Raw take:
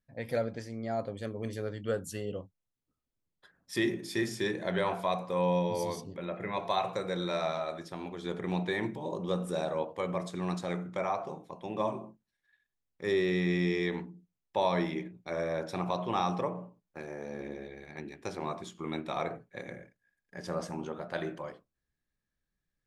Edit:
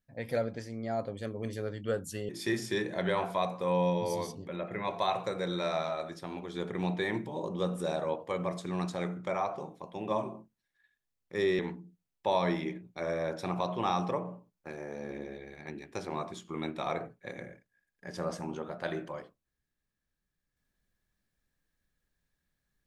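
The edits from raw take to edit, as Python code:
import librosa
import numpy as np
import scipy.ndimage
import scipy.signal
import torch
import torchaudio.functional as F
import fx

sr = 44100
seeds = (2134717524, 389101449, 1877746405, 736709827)

y = fx.edit(x, sr, fx.cut(start_s=2.29, length_s=1.69),
    fx.cut(start_s=13.28, length_s=0.61), tone=tone)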